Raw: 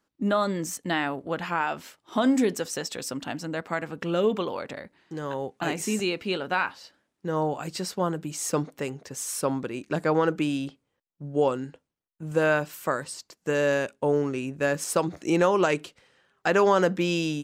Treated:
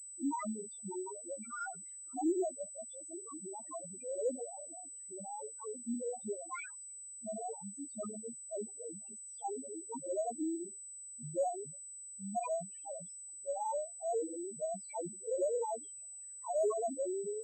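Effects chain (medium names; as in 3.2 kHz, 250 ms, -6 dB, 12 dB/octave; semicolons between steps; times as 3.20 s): sawtooth pitch modulation +8.5 st, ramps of 416 ms; loudest bins only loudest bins 1; class-D stage that switches slowly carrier 8 kHz; trim -3.5 dB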